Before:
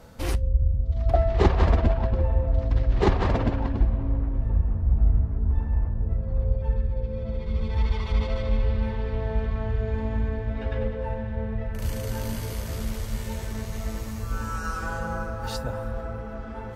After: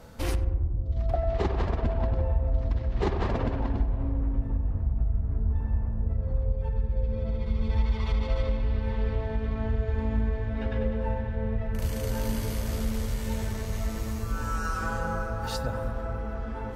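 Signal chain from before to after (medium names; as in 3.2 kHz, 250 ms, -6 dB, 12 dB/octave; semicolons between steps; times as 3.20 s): compression, threshold -23 dBFS, peak gain reduction 10.5 dB; filtered feedback delay 95 ms, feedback 82%, low-pass 1.2 kHz, level -9 dB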